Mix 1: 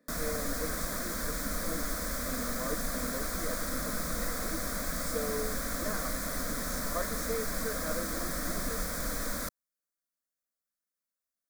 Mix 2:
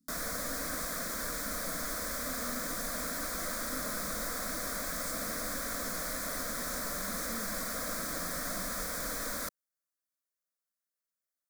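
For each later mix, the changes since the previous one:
speech: add inverse Chebyshev band-stop 630–2000 Hz, stop band 60 dB; background: add bass shelf 230 Hz -9.5 dB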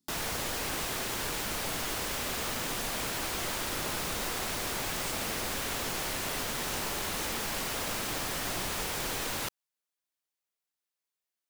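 speech: add bass shelf 410 Hz -12 dB; master: remove static phaser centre 570 Hz, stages 8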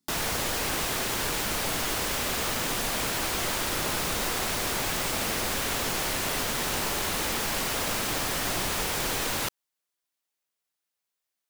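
background +5.0 dB

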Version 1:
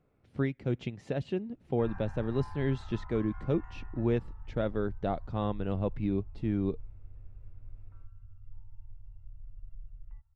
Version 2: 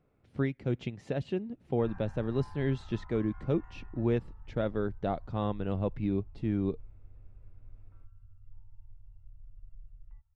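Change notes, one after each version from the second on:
background -4.0 dB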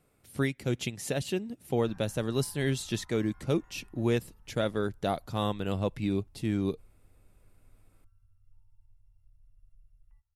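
background -10.0 dB; master: remove tape spacing loss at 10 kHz 35 dB

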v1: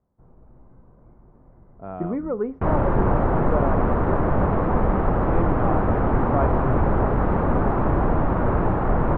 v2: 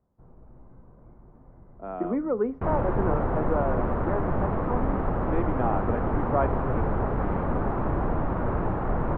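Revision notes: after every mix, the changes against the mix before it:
speech: add steep high-pass 200 Hz 48 dB/octave; second sound -6.0 dB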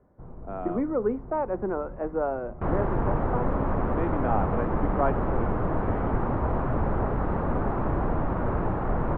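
speech: entry -1.35 s; first sound +9.0 dB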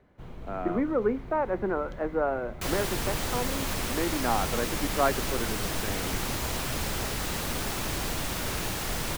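speech: add inverse Chebyshev low-pass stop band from 8.3 kHz, stop band 80 dB; second sound -7.5 dB; master: remove low-pass 1.2 kHz 24 dB/octave

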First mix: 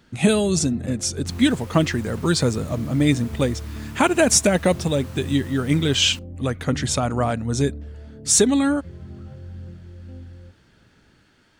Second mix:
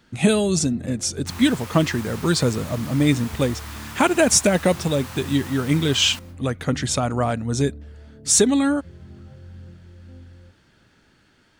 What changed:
first sound -5.0 dB; second sound +6.5 dB; reverb: on, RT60 0.65 s

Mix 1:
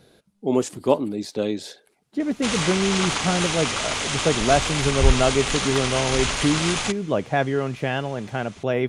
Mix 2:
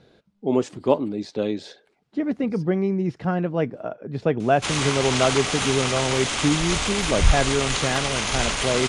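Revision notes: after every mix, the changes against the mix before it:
speech: add distance through air 110 m; background: entry +2.20 s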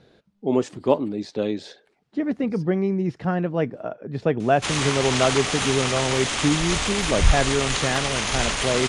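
master: remove band-stop 1.8 kHz, Q 25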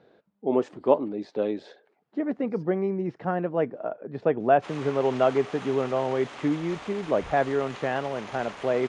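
background -10.5 dB; master: add band-pass filter 690 Hz, Q 0.61

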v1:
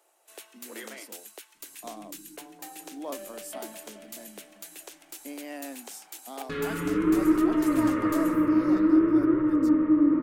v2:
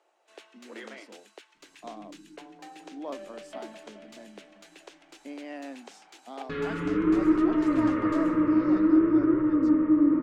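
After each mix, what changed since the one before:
master: add distance through air 140 m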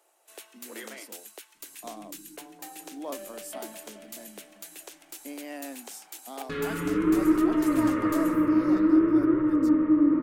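master: remove distance through air 140 m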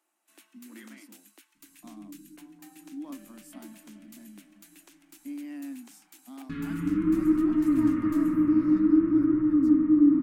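master: add FFT filter 120 Hz 0 dB, 290 Hz +4 dB, 440 Hz -22 dB, 1.1 kHz -9 dB, 2.4 kHz -8 dB, 3.4 kHz -11 dB

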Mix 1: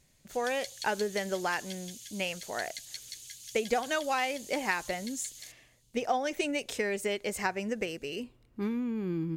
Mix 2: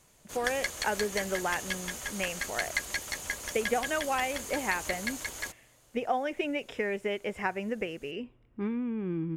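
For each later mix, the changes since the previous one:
speech: add Savitzky-Golay filter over 25 samples; background: remove ladder high-pass 3 kHz, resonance 35%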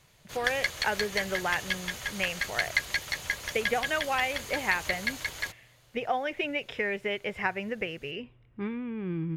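master: add graphic EQ 125/250/2000/4000/8000 Hz +8/-5/+4/+6/-7 dB

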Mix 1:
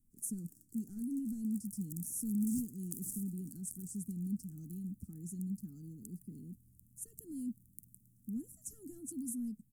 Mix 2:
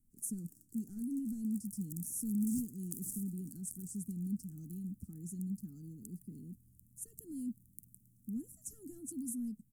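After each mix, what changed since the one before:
no change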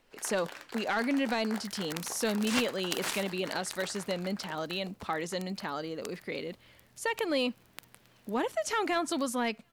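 master: remove inverse Chebyshev band-stop 530–4000 Hz, stop band 50 dB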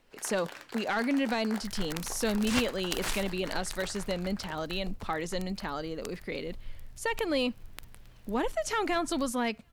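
second sound: remove high-pass 150 Hz 12 dB/octave; master: add bass shelf 160 Hz +5 dB

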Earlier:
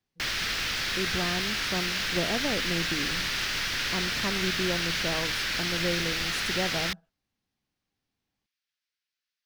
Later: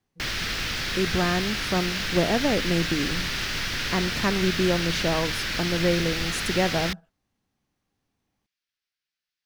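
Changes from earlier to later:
speech +7.5 dB; background: add bass shelf 440 Hz +7.5 dB

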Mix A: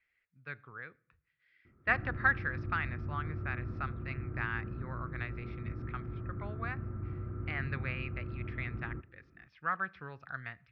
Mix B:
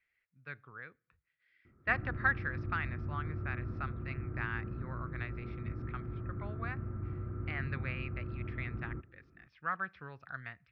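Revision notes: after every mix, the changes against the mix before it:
speech: send -9.0 dB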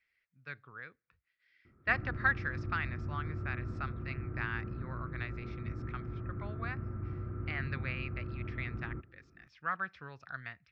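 speech: send -9.0 dB; master: remove distance through air 220 m

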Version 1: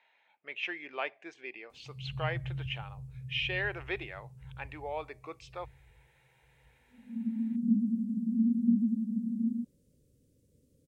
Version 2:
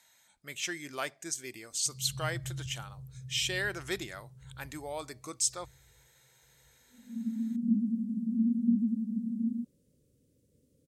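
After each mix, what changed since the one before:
speech: remove cabinet simulation 400–2800 Hz, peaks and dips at 450 Hz +5 dB, 830 Hz +5 dB, 1.4 kHz -4 dB, 2.6 kHz +8 dB; background: add bass shelf 64 Hz -9 dB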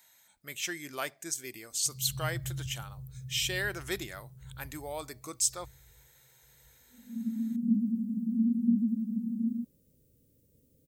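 background: add bass shelf 64 Hz +9 dB; master: remove low-pass 9.4 kHz 12 dB/octave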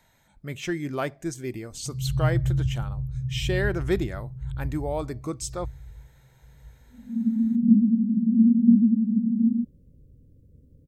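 speech +6.0 dB; master: add tilt EQ -4.5 dB/octave

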